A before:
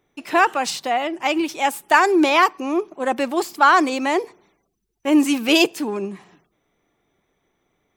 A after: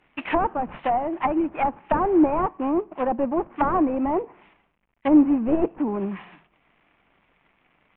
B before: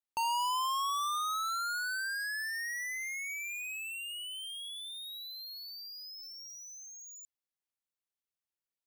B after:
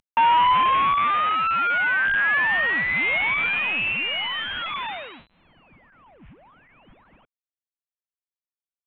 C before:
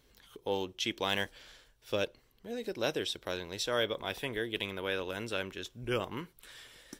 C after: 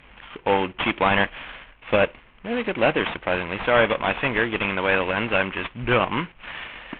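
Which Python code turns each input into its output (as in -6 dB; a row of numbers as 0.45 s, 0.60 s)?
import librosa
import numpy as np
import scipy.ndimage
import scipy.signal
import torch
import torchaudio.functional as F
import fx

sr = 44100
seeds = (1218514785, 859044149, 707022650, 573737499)

y = fx.cvsd(x, sr, bps=16000)
y = fx.env_lowpass_down(y, sr, base_hz=590.0, full_db=-21.0)
y = fx.graphic_eq_15(y, sr, hz=(100, 400, 1000, 2500), db=(-6, -7, 3, 4))
y = y * 10.0 ** (-24 / 20.0) / np.sqrt(np.mean(np.square(y)))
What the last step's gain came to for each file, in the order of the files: +4.0 dB, +12.5 dB, +16.0 dB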